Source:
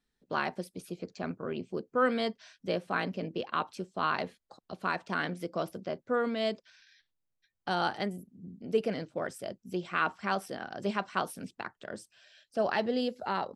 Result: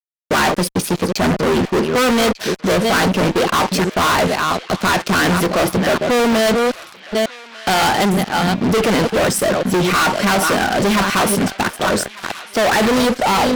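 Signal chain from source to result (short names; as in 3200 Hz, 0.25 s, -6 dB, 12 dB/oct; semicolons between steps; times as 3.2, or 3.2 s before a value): reverse delay 0.427 s, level -13 dB; fuzz box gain 46 dB, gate -55 dBFS; narrowing echo 1.196 s, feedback 71%, band-pass 2700 Hz, level -15 dB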